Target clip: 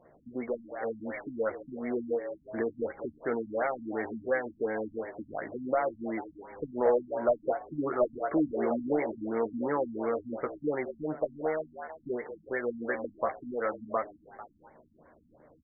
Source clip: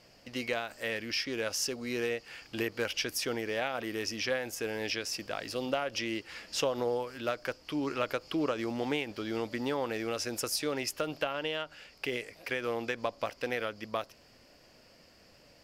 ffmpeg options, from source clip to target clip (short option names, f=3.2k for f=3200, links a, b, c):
-filter_complex "[0:a]adynamicsmooth=sensitivity=3:basefreq=1.5k,lowshelf=f=210:g=-10,asplit=2[a][b];[b]adelay=13,volume=-6.5dB[c];[a][c]amix=inputs=2:normalize=0,asplit=6[d][e][f][g][h][i];[e]adelay=223,afreqshift=85,volume=-10dB[j];[f]adelay=446,afreqshift=170,volume=-16.9dB[k];[g]adelay=669,afreqshift=255,volume=-23.9dB[l];[h]adelay=892,afreqshift=340,volume=-30.8dB[m];[i]adelay=1115,afreqshift=425,volume=-37.7dB[n];[d][j][k][l][m][n]amix=inputs=6:normalize=0,asettb=1/sr,asplit=3[o][p][q];[o]atrim=end=6.714[r];[p]atrim=start=6.71:end=9.22,asetpts=PTS-STARTPTS,afade=t=in:d=0.004:c=qsin,afade=t=out:st=2.506:d=0.004:c=qsin,adynamicequalizer=threshold=0.01:dfrequency=640:dqfactor=1.3:tfrequency=640:tqfactor=1.3:attack=5:release=100:ratio=0.375:range=3:mode=boostabove:tftype=bell[s];[q]atrim=start=9.216[t];[r][s]acrossfade=d=0.004:c1=hsin:c2=qsin[u];[u][t]acrossfade=d=0.004:c1=qsin:c2=hsin,asoftclip=type=tanh:threshold=-20.5dB,afftfilt=real='re*lt(b*sr/1024,270*pow(2300/270,0.5+0.5*sin(2*PI*2.8*pts/sr)))':imag='im*lt(b*sr/1024,270*pow(2300/270,0.5+0.5*sin(2*PI*2.8*pts/sr)))':win_size=1024:overlap=0.75,volume=5.5dB"